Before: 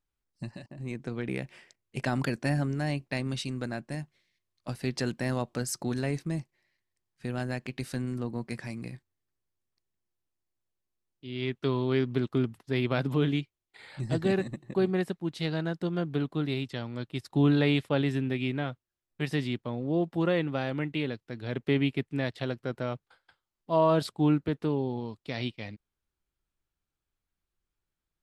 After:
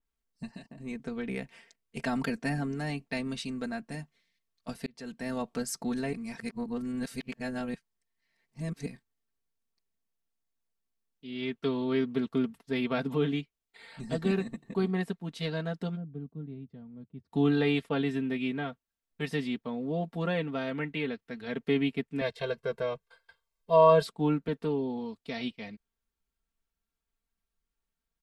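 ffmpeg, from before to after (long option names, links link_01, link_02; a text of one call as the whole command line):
ffmpeg -i in.wav -filter_complex "[0:a]asplit=3[link_01][link_02][link_03];[link_01]afade=type=out:start_time=15.95:duration=0.02[link_04];[link_02]bandpass=frequency=100:width_type=q:width=1.2,afade=type=in:start_time=15.95:duration=0.02,afade=type=out:start_time=17.31:duration=0.02[link_05];[link_03]afade=type=in:start_time=17.31:duration=0.02[link_06];[link_04][link_05][link_06]amix=inputs=3:normalize=0,asettb=1/sr,asplit=3[link_07][link_08][link_09];[link_07]atrim=end=20.674[link_10];[link_08]atrim=start=20.67:end=21.56,asetpts=PTS-STARTPTS,afade=type=in:duration=0.004:curve=qsin,afade=type=out:start_time=0.886:duration=0.004:curve=qsin,equalizer=frequency=1900:width=1.5:gain=4.5[link_11];[link_09]atrim=start=21.556[link_12];[link_10][link_11]acrossfade=duration=0.004:curve1=hsin:curve2=qsin[link_13];[link_13][link_12]acrossfade=duration=0.004:curve1=qsin:curve2=hsin,asettb=1/sr,asplit=3[link_14][link_15][link_16];[link_14]atrim=end=22.214[link_17];[link_15]atrim=start=22.21:end=24.05,asetpts=PTS-STARTPTS,afade=type=in:duration=0.004:curve=qsin,afade=type=out:start_time=1.836:duration=0.004:curve=qsin,aecho=1:1:1.9:0.96,atrim=end_sample=81144[link_18];[link_16]atrim=start=24.046[link_19];[link_17][link_18]acrossfade=duration=0.004:curve1=hsin:curve2=qsin[link_20];[link_20][link_19]acrossfade=duration=0.004:curve1=qsin:curve2=hsin,asplit=4[link_21][link_22][link_23][link_24];[link_21]atrim=end=4.86,asetpts=PTS-STARTPTS,afade=type=out:start_time=4.856:duration=0.004:curve=hsin[link_25];[link_22]atrim=start=4.86:end=6.132,asetpts=PTS-STARTPTS,afade=type=in:duration=0.6[link_26];[link_23]atrim=start=6.128:end=8.862,asetpts=PTS-STARTPTS,areverse[link_27];[link_24]atrim=start=8.858[link_28];[link_25][link_26]concat=n=2:v=0:a=1[link_29];[link_29][link_27]acrossfade=duration=0.004:curve1=hsin:curve2=hsin[link_30];[link_30][link_28]acrossfade=duration=0.004:curve1=hsin:curve2=hsin,aecho=1:1:4.4:0.82,adynamicequalizer=threshold=0.00794:dfrequency=3000:dqfactor=0.7:tfrequency=3000:tqfactor=0.7:attack=5:release=100:ratio=0.375:range=2:mode=cutabove:tftype=highshelf,volume=-3.5dB" out.wav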